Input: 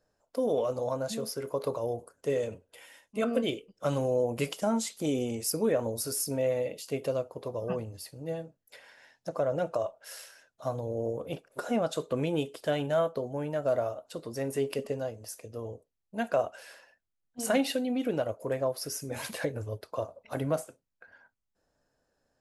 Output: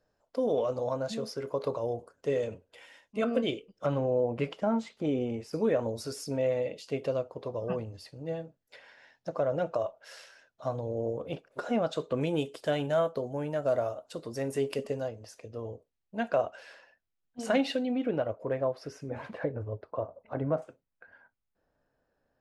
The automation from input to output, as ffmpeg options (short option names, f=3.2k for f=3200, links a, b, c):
-af "asetnsamples=n=441:p=0,asendcmd='3.86 lowpass f 2300;5.53 lowpass f 4900;12.21 lowpass f 9200;15.08 lowpass f 4600;17.96 lowpass f 2600;19.1 lowpass f 1400;20.62 lowpass f 2900',lowpass=5.4k"